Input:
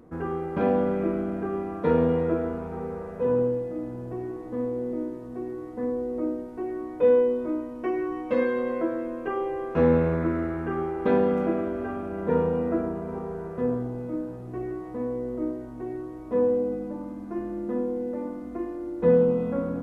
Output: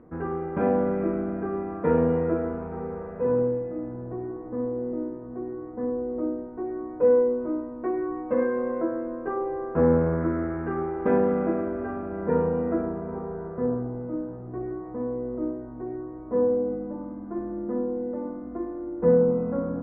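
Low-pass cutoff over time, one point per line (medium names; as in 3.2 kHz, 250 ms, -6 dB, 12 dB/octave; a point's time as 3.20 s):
low-pass 24 dB/octave
3.61 s 2.2 kHz
4.25 s 1.6 kHz
10.01 s 1.6 kHz
10.66 s 2.1 kHz
12.81 s 2.1 kHz
13.71 s 1.6 kHz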